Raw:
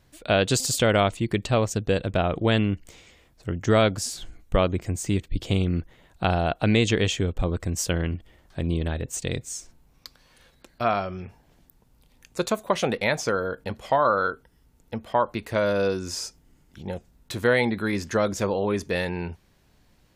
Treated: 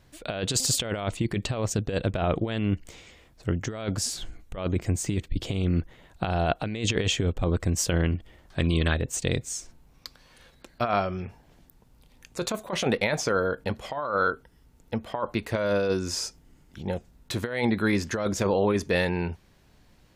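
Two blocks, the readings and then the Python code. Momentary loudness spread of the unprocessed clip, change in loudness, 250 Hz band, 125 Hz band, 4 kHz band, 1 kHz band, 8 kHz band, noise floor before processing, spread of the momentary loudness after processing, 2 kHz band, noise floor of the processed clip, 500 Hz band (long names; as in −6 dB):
15 LU, −2.5 dB, −1.5 dB, −1.0 dB, −1.0 dB, −4.5 dB, +1.0 dB, −61 dBFS, 11 LU, −2.5 dB, −59 dBFS, −3.5 dB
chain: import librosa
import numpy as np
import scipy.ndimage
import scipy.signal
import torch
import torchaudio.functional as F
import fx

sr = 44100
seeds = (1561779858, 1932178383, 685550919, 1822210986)

y = fx.high_shelf(x, sr, hz=8800.0, db=-4.0)
y = fx.over_compress(y, sr, threshold_db=-24.0, ratio=-0.5)
y = fx.spec_box(y, sr, start_s=8.59, length_s=0.35, low_hz=1000.0, high_hz=8700.0, gain_db=8)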